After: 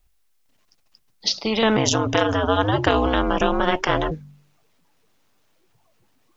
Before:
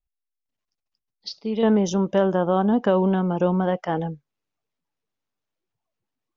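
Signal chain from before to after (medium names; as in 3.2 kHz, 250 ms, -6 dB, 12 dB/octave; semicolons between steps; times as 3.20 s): de-hum 48.61 Hz, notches 5; 1.76–4.10 s: ring modulator 67 Hz -> 210 Hz; spectrum-flattening compressor 2:1; trim +5.5 dB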